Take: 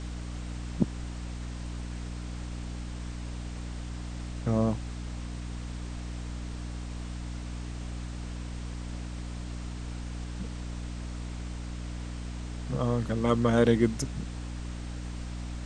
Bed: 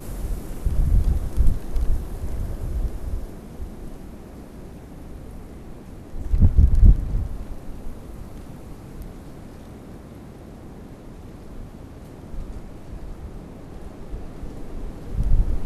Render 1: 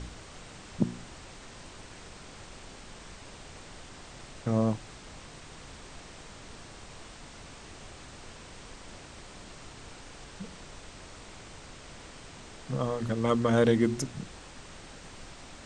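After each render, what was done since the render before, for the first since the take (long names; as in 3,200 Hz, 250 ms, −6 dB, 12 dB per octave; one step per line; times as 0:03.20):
hum removal 60 Hz, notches 6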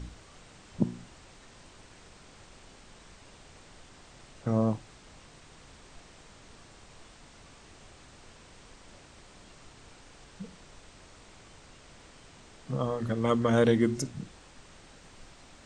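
noise reduction from a noise print 6 dB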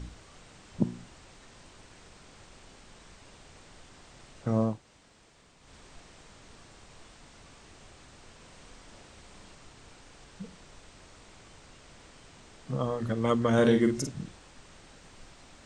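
0:04.74–0:05.63: fill with room tone, crossfade 0.24 s
0:08.34–0:09.55: flutter between parallel walls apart 11.4 metres, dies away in 0.64 s
0:13.54–0:14.36: double-tracking delay 48 ms −6.5 dB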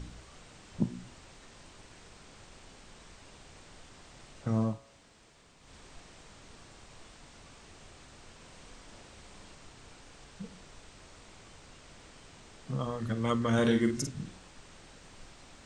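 hum removal 61.62 Hz, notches 35
dynamic equaliser 510 Hz, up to −6 dB, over −43 dBFS, Q 0.78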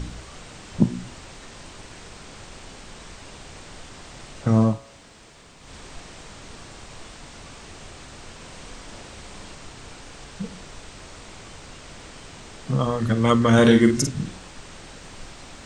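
level +11.5 dB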